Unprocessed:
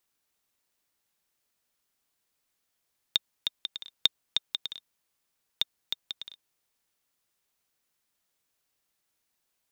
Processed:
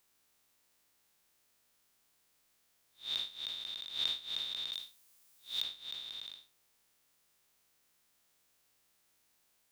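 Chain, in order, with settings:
spectrum smeared in time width 151 ms
0:04.72–0:05.62: high-shelf EQ 4,700 Hz +9.5 dB
level +7 dB

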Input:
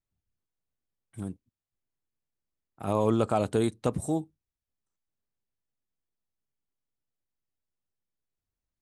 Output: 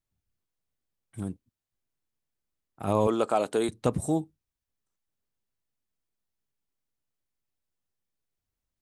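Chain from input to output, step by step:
0:03.07–0:03.69: high-pass filter 330 Hz 12 dB per octave
floating-point word with a short mantissa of 8 bits
level +2 dB

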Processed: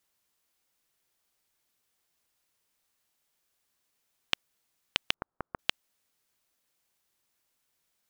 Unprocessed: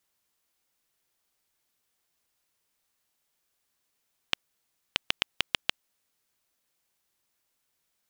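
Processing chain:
0:05.14–0:05.59: Butterworth low-pass 1,400 Hz 36 dB per octave

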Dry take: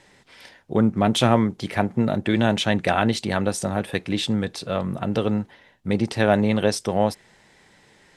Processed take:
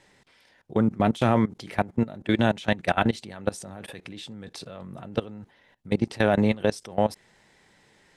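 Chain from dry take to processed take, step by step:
output level in coarse steps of 20 dB

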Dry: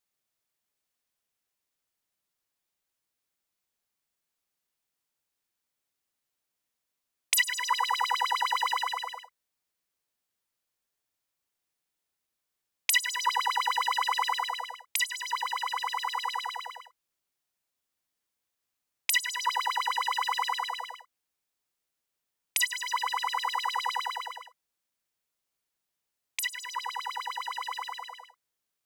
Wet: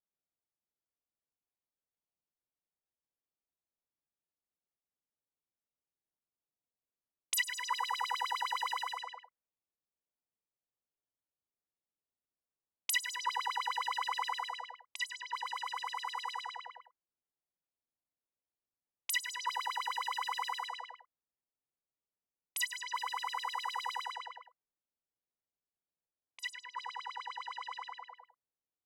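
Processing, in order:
0:13.15–0:15.47: high-shelf EQ 8,800 Hz −6.5 dB
low-pass that shuts in the quiet parts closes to 830 Hz, open at −26.5 dBFS
level −7.5 dB

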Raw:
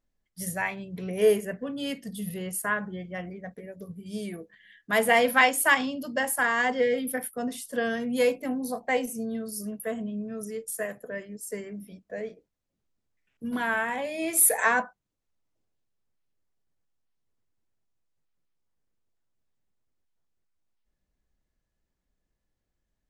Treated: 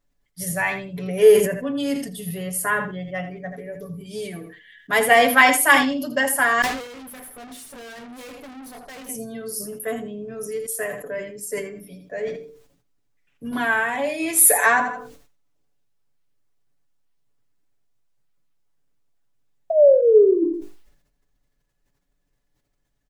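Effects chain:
0:19.70–0:20.44: sound drawn into the spectrogram fall 330–660 Hz −19 dBFS
comb filter 7 ms, depth 70%
repeating echo 82 ms, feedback 20%, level −12.5 dB
0:06.62–0:09.09: tube saturation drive 42 dB, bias 0.7
mains-hum notches 50/100/150/200/250/300/350/400/450/500 Hz
level that may fall only so fast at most 79 dB per second
level +4 dB

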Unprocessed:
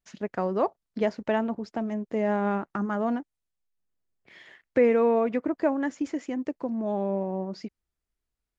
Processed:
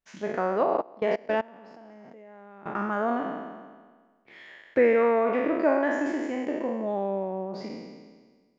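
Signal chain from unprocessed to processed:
peak hold with a decay on every bin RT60 1.52 s
bass and treble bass −7 dB, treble −8 dB
0:00.63–0:02.66: output level in coarse steps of 24 dB

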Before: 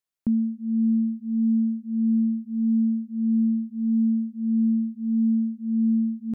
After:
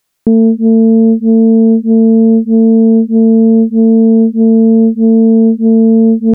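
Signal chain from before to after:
boost into a limiter +23.5 dB
highs frequency-modulated by the lows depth 0.5 ms
level −1 dB

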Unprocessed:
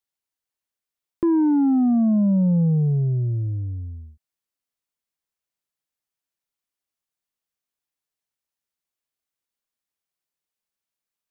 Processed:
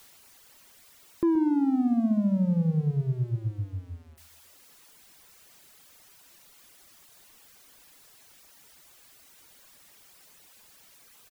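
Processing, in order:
converter with a step at zero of −42.5 dBFS
repeating echo 126 ms, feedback 42%, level −9 dB
reverb reduction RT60 0.93 s
level −4 dB

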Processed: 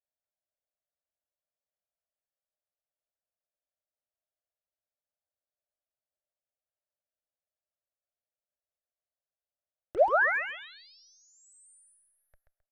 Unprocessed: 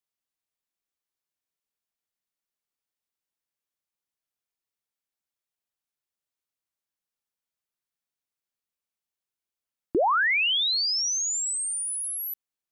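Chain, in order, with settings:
harmonic generator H 8 −31 dB, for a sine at −18 dBFS
low-pass that shuts in the quiet parts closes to 730 Hz, open at −24 dBFS
drawn EQ curve 100 Hz 0 dB, 180 Hz −10 dB, 270 Hz −21 dB, 400 Hz −9 dB, 600 Hz +12 dB, 1,000 Hz −4 dB, 1,700 Hz +10 dB, 2,800 Hz −11 dB, 7,800 Hz −9 dB, 14,000 Hz −29 dB
in parallel at −8 dB: wrap-around overflow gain 25 dB
on the sum: treble cut that deepens with the level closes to 1,600 Hz, closed at −31.5 dBFS
on a send: repeating echo 132 ms, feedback 33%, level −5.5 dB
on the sum: level −6 dB

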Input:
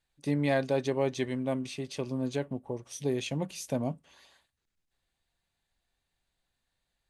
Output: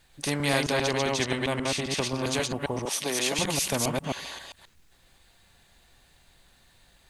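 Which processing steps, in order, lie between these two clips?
delay that plays each chunk backwards 133 ms, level −2 dB
0:00.72–0:02.26: high-shelf EQ 5,800 Hz −8.5 dB
0:02.85–0:03.39: Bessel high-pass filter 360 Hz, order 4
every bin compressed towards the loudest bin 2 to 1
level +2 dB

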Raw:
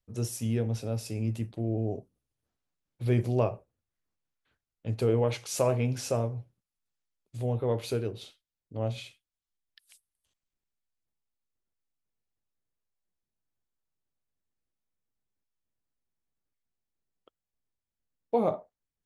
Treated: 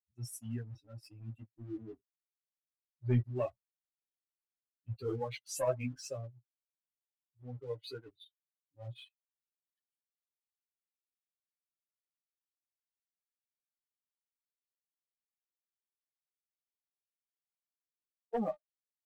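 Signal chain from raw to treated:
spectral dynamics exaggerated over time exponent 3
leveller curve on the samples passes 1
multi-voice chorus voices 4, 0.66 Hz, delay 11 ms, depth 4.8 ms
level −2.5 dB

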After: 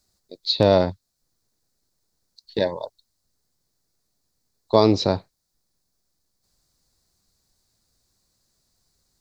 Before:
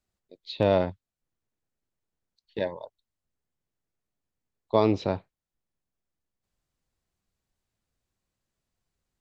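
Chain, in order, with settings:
high shelf with overshoot 3,600 Hz +6.5 dB, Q 3
in parallel at −2 dB: downward compressor, threshold −32 dBFS, peak gain reduction 15 dB
on the sum: level +4.5 dB

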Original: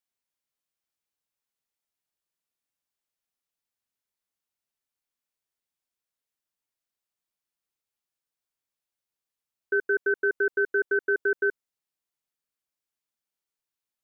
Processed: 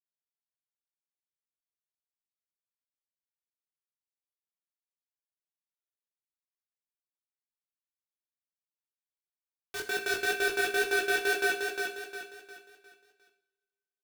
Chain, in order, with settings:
mains-hum notches 50/100/150/200/250 Hz
in parallel at 0 dB: brickwall limiter −26.5 dBFS, peak gain reduction 10 dB
on the sum: volume swells 383 ms
log-companded quantiser 2 bits
chorus effect 2.1 Hz, delay 17.5 ms, depth 3.8 ms
on a send: repeating echo 355 ms, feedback 40%, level −4 dB
on the sum: coupled-rooms reverb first 0.47 s, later 1.9 s, from −20 dB, DRR 4.5 dB

